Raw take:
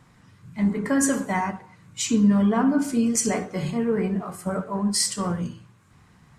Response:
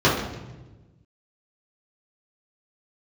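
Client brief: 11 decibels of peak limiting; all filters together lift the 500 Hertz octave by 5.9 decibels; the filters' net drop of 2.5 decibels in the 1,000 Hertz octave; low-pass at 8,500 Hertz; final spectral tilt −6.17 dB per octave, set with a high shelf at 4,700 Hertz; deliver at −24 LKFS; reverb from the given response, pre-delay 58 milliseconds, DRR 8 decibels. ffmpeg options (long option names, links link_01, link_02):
-filter_complex "[0:a]lowpass=8500,equalizer=frequency=500:width_type=o:gain=8.5,equalizer=frequency=1000:width_type=o:gain=-6.5,highshelf=frequency=4700:gain=-9,alimiter=limit=-18.5dB:level=0:latency=1,asplit=2[link_01][link_02];[1:a]atrim=start_sample=2205,adelay=58[link_03];[link_02][link_03]afir=irnorm=-1:irlink=0,volume=-29dB[link_04];[link_01][link_04]amix=inputs=2:normalize=0,volume=1dB"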